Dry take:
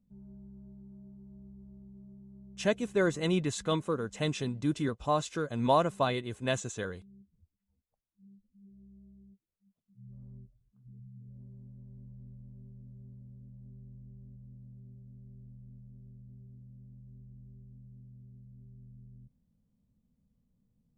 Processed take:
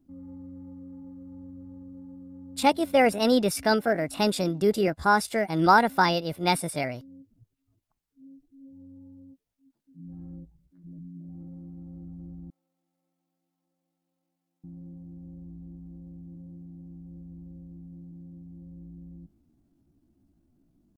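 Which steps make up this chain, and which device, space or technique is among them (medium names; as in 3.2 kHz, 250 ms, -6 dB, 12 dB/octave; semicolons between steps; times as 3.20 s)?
chipmunk voice (pitch shift +5.5 st); 12.50–14.64 s: Chebyshev high-pass 1.9 kHz, order 2; trim +7 dB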